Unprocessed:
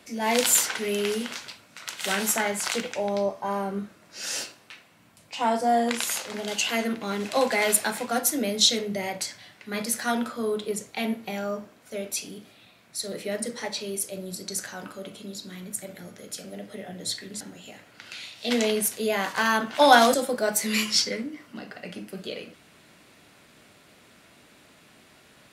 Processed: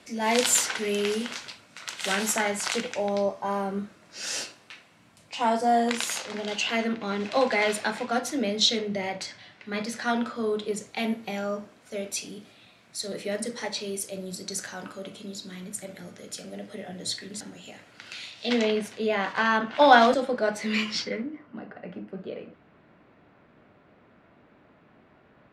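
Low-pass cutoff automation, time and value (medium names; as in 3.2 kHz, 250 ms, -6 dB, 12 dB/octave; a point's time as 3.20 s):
6.04 s 9.1 kHz
6.54 s 4.7 kHz
10.13 s 4.7 kHz
11.02 s 9.1 kHz
18.24 s 9.1 kHz
18.69 s 3.4 kHz
20.95 s 3.4 kHz
21.41 s 1.4 kHz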